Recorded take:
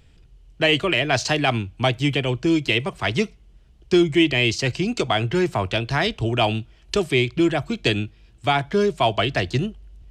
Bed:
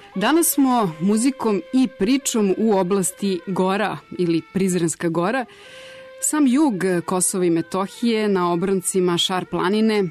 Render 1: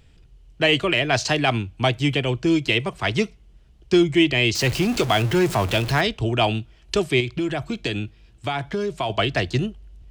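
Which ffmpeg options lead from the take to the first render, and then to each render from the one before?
-filter_complex "[0:a]asettb=1/sr,asplit=3[a][b][c];[a]atrim=end=4.554[d];[b]atrim=start=4.55:end=6.01,asetpts=PTS-STARTPTS,afade=t=in:d=0.004:c=qsin,afade=t=out:st=1.456:d=0.004:c=qsin,aeval=exprs='val(0)+0.5*0.0531*sgn(val(0))':c=same[e];[c]atrim=start=6.006[f];[d][e]acrossfade=d=0.004:c1=hsin:c2=qsin[g];[g][f]acrossfade=d=0.004:c1=qsin:c2=hsin,asettb=1/sr,asplit=3[h][i][j];[h]atrim=end=7.204[k];[i]atrim=start=7.2:end=9.1,asetpts=PTS-STARTPTS,afade=t=in:d=0.004:c=qsin,afade=t=out:st=1.896:d=0.004:c=qsin,acompressor=threshold=-21dB:ratio=4:attack=3.2:release=140:knee=1:detection=peak[l];[j]atrim=start=9.096[m];[k][l]acrossfade=d=0.004:c1=hsin:c2=qsin[n];[n][m]acrossfade=d=0.004:c1=qsin:c2=hsin"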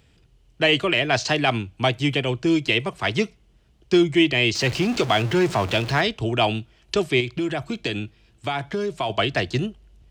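-filter_complex "[0:a]highpass=f=110:p=1,acrossover=split=7500[a][b];[b]acompressor=threshold=-49dB:ratio=4:attack=1:release=60[c];[a][c]amix=inputs=2:normalize=0"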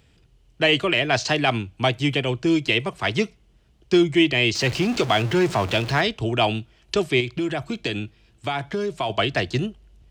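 -af anull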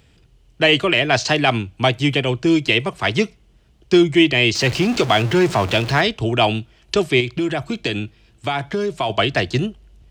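-af "volume=4dB"

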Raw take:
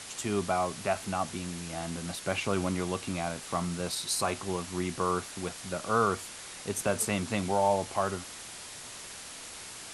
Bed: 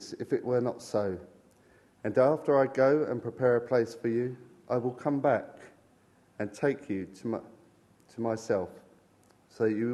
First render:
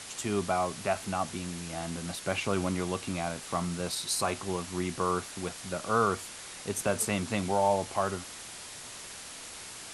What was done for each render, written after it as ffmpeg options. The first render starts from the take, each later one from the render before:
-af anull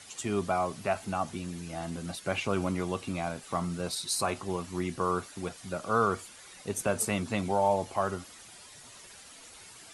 -af "afftdn=nr=10:nf=-44"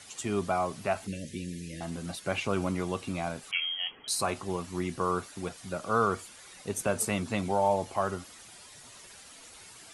-filter_complex "[0:a]asettb=1/sr,asplit=3[a][b][c];[a]atrim=end=1.074[d];[b]atrim=start=1.07:end=1.81,asetpts=PTS-STARTPTS,afade=t=in:d=0.004:c=qsin,afade=t=out:st=0.736:d=0.004:c=qsin,asuperstop=centerf=990:order=20:qfactor=0.9[e];[c]atrim=start=1.806[f];[d][e]acrossfade=d=0.004:c1=hsin:c2=qsin[g];[g][f]acrossfade=d=0.004:c1=qsin:c2=hsin,asettb=1/sr,asplit=3[h][i][j];[h]atrim=end=3.514[k];[i]atrim=start=3.51:end=4.08,asetpts=PTS-STARTPTS,afade=t=in:d=0.004:c=qsin,afade=t=out:st=0.566:d=0.004:c=qsin,lowpass=f=2.9k:t=q:w=0.5098,lowpass=f=2.9k:t=q:w=0.6013,lowpass=f=2.9k:t=q:w=0.9,lowpass=f=2.9k:t=q:w=2.563,afreqshift=-3400[l];[j]atrim=start=4.076[m];[k][l]acrossfade=d=0.004:c1=hsin:c2=qsin[n];[n][m]acrossfade=d=0.004:c1=qsin:c2=hsin"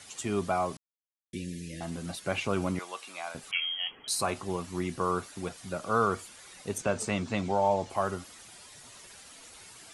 -filter_complex "[0:a]asettb=1/sr,asplit=3[a][b][c];[a]atrim=end=2.794[d];[b]atrim=start=2.79:end=3.35,asetpts=PTS-STARTPTS,afade=t=in:d=0.004:c=qsin,afade=t=out:st=0.556:d=0.004:c=qsin,highpass=850[e];[c]atrim=start=3.346[f];[d][e]acrossfade=d=0.004:c1=hsin:c2=qsin[g];[g][f]acrossfade=d=0.004:c1=qsin:c2=hsin,asettb=1/sr,asplit=3[h][i][j];[h]atrim=end=6.784[k];[i]atrim=start=6.78:end=7.9,asetpts=PTS-STARTPTS,afade=t=in:d=0.004:c=qsin,afade=t=out:st=1.116:d=0.004:c=qsin,lowpass=f=7.6k:w=0.5412,lowpass=f=7.6k:w=1.3066[l];[j]atrim=start=7.896[m];[k][l]acrossfade=d=0.004:c1=hsin:c2=qsin[n];[n][m]acrossfade=d=0.004:c1=qsin:c2=hsin,asplit=3[o][p][q];[o]atrim=end=0.77,asetpts=PTS-STARTPTS,afade=t=out:st=0.766:d=0.004:c=hsin[r];[p]atrim=start=0.77:end=1.33,asetpts=PTS-STARTPTS,volume=0[s];[q]atrim=start=1.33,asetpts=PTS-STARTPTS,afade=t=in:d=0.004:c=hsin[t];[r][s][t]concat=n=3:v=0:a=1"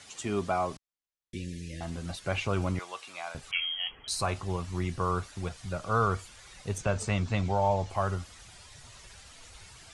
-af "lowpass=7.9k,asubboost=boost=7.5:cutoff=92"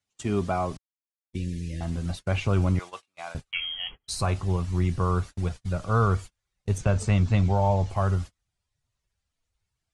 -af "agate=range=-35dB:threshold=-40dB:ratio=16:detection=peak,lowshelf=f=260:g=10"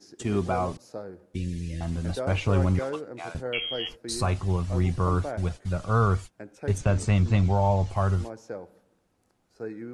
-filter_complex "[1:a]volume=-8.5dB[a];[0:a][a]amix=inputs=2:normalize=0"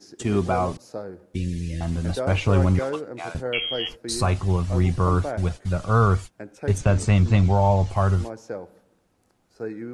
-af "volume=4dB"

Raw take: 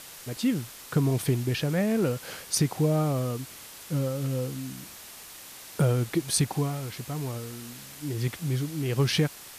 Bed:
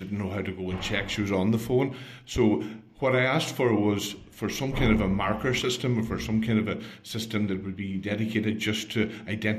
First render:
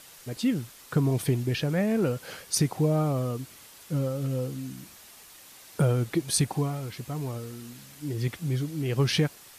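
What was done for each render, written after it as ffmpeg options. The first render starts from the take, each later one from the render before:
-af "afftdn=nr=6:nf=-45"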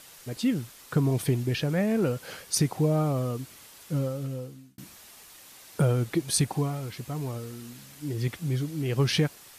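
-filter_complex "[0:a]asplit=2[a][b];[a]atrim=end=4.78,asetpts=PTS-STARTPTS,afade=t=out:st=3.99:d=0.79[c];[b]atrim=start=4.78,asetpts=PTS-STARTPTS,afade=t=in:d=0.004:c=hsin[d];[c][d]concat=n=2:v=0:a=1"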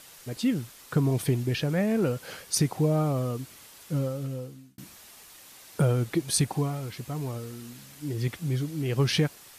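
-af anull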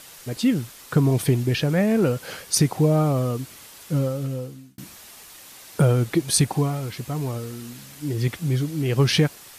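-af "volume=5.5dB"

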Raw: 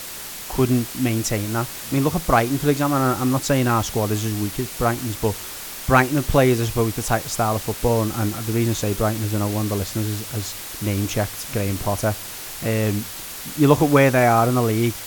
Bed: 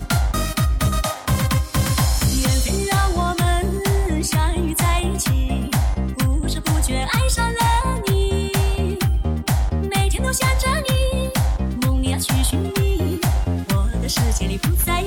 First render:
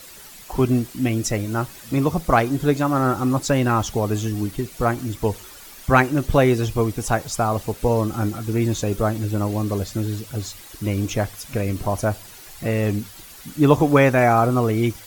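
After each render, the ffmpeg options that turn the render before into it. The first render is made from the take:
-af "afftdn=nr=11:nf=-34"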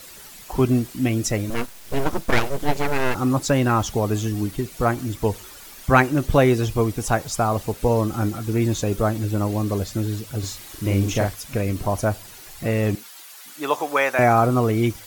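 -filter_complex "[0:a]asettb=1/sr,asplit=3[a][b][c];[a]atrim=end=1.504[d];[b]atrim=start=1.5:end=3.15,asetpts=PTS-STARTPTS,afade=t=in:d=0.004:c=qsin,afade=t=out:st=1.646:d=0.004:c=qsin,aeval=exprs='abs(val(0))':c=same[e];[c]atrim=start=3.146[f];[d][e]acrossfade=d=0.004:c1=hsin:c2=qsin[g];[g][f]acrossfade=d=0.004:c1=qsin:c2=hsin,asettb=1/sr,asplit=3[h][i][j];[h]atrim=end=10.394[k];[i]atrim=start=10.39:end=11.34,asetpts=PTS-STARTPTS,afade=t=in:d=0.004:c=qsin,afade=t=out:st=0.946:d=0.004:c=qsin,asplit=2[l][m];[m]adelay=41,volume=-3dB[n];[l][n]amix=inputs=2:normalize=0,atrim=end_sample=41895[o];[j]atrim=start=11.336[p];[k][o]acrossfade=d=0.004:c1=hsin:c2=qsin[q];[q][p]acrossfade=d=0.004:c1=qsin:c2=hsin,asettb=1/sr,asplit=3[r][s][t];[r]atrim=end=12.954[u];[s]atrim=start=12.95:end=14.19,asetpts=PTS-STARTPTS,afade=t=in:d=0.004:c=qsin,afade=t=out:st=1.236:d=0.004:c=qsin,highpass=700[v];[t]atrim=start=14.186[w];[u][v]acrossfade=d=0.004:c1=hsin:c2=qsin[x];[x][w]acrossfade=d=0.004:c1=qsin:c2=hsin"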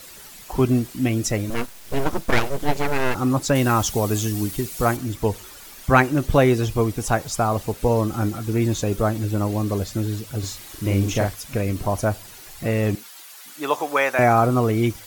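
-filter_complex "[0:a]asettb=1/sr,asplit=3[a][b][c];[a]atrim=end=3.554[d];[b]atrim=start=3.55:end=4.97,asetpts=PTS-STARTPTS,afade=t=in:d=0.004:c=qsin,afade=t=out:st=1.416:d=0.004:c=qsin,highshelf=f=4.5k:g=9.5[e];[c]atrim=start=4.966[f];[d][e]acrossfade=d=0.004:c1=hsin:c2=qsin[g];[g][f]acrossfade=d=0.004:c1=qsin:c2=hsin"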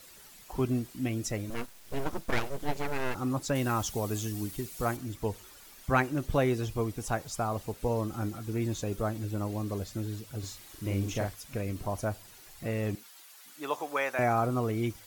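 -af "volume=-10.5dB"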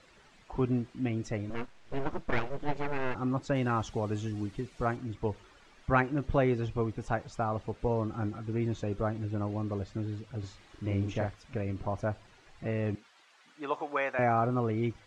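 -af "lowpass=f=7.9k:w=0.5412,lowpass=f=7.9k:w=1.3066,bass=f=250:g=0,treble=f=4k:g=-15"

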